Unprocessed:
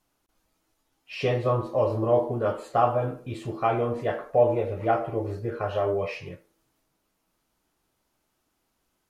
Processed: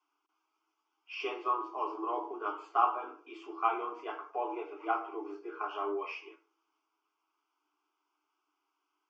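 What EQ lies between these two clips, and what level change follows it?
rippled Chebyshev high-pass 290 Hz, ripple 6 dB; LPF 5200 Hz 24 dB/oct; fixed phaser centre 2700 Hz, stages 8; +1.0 dB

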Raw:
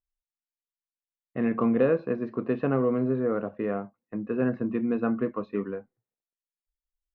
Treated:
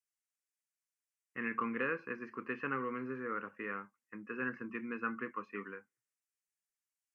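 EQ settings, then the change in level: air absorption 82 m; differentiator; fixed phaser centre 1600 Hz, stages 4; +15.5 dB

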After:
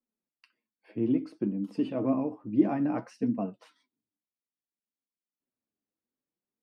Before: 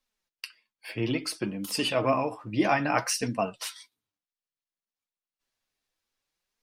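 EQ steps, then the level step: band-pass 250 Hz, Q 2.1; +5.5 dB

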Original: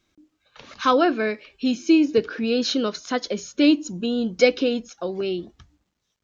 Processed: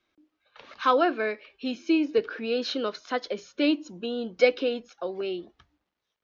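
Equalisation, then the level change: three-band isolator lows -12 dB, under 340 Hz, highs -21 dB, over 5700 Hz; high shelf 5100 Hz -8 dB; -2.0 dB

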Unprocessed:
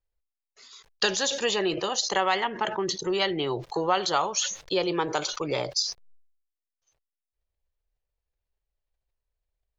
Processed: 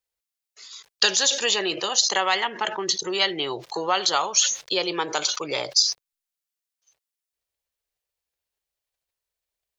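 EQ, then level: HPF 290 Hz 6 dB/oct; high shelf 2100 Hz +9 dB; 0.0 dB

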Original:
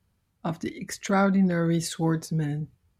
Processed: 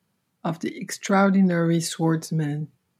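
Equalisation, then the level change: HPF 140 Hz 24 dB/oct; +3.5 dB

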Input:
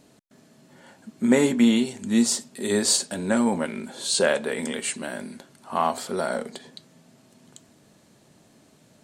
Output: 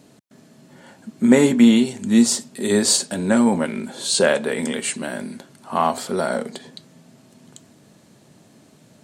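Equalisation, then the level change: HPF 99 Hz; low shelf 200 Hz +6 dB; +3.5 dB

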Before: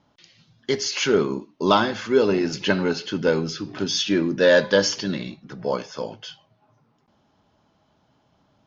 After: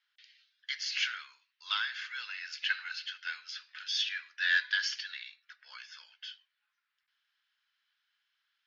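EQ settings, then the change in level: Chebyshev high-pass 1600 Hz, order 4; air absorption 110 m; bell 6400 Hz -5.5 dB 0.41 oct; -2.5 dB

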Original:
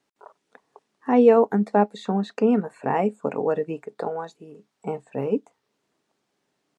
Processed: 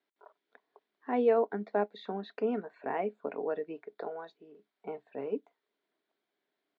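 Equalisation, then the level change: air absorption 53 m; speaker cabinet 470–3700 Hz, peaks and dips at 520 Hz -8 dB, 850 Hz -10 dB, 1200 Hz -9 dB, 1800 Hz -4 dB, 2700 Hz -9 dB; -2.0 dB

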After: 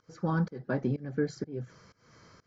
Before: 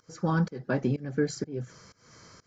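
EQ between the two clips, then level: dynamic EQ 2700 Hz, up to -6 dB, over -60 dBFS, Q 3.4; air absorption 120 m; -2.5 dB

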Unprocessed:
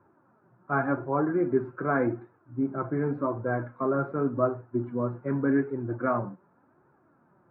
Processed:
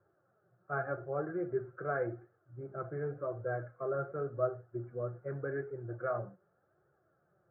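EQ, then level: LPF 1600 Hz 12 dB/oct; fixed phaser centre 960 Hz, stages 6; -5.0 dB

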